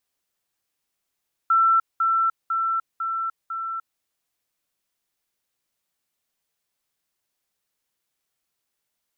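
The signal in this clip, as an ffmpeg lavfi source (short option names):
-f lavfi -i "aevalsrc='pow(10,(-14.5-3*floor(t/0.5))/20)*sin(2*PI*1340*t)*clip(min(mod(t,0.5),0.3-mod(t,0.5))/0.005,0,1)':d=2.5:s=44100"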